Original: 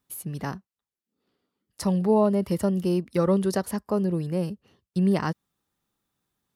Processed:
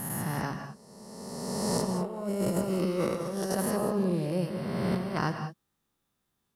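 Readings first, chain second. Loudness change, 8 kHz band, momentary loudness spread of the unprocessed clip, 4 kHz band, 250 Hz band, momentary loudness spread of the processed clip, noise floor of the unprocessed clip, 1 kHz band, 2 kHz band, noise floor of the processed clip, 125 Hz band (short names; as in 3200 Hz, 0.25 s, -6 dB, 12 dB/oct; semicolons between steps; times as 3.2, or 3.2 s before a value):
-5.0 dB, +3.5 dB, 13 LU, +2.0 dB, -5.5 dB, 12 LU, under -85 dBFS, -2.0 dB, +1.0 dB, -80 dBFS, -4.0 dB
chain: spectral swells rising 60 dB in 2.04 s; negative-ratio compressor -23 dBFS, ratio -0.5; non-linear reverb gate 0.22 s rising, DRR 7.5 dB; gain -6 dB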